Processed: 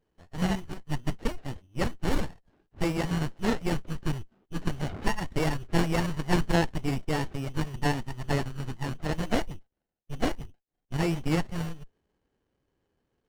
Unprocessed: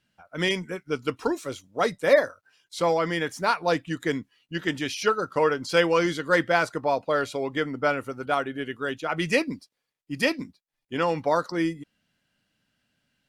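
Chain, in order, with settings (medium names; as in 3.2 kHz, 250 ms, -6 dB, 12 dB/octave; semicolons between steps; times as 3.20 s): peaking EQ 730 Hz -3 dB; frequency inversion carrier 3.2 kHz; sliding maximum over 33 samples; trim +1.5 dB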